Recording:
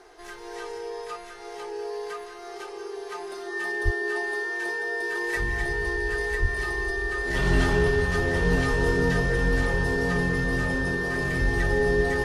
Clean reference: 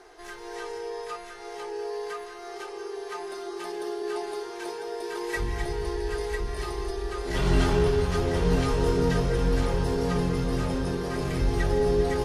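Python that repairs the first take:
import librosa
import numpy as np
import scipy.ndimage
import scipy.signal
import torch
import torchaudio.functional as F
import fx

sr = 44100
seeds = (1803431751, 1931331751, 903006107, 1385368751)

y = fx.notch(x, sr, hz=1800.0, q=30.0)
y = fx.fix_deplosive(y, sr, at_s=(3.84, 6.41))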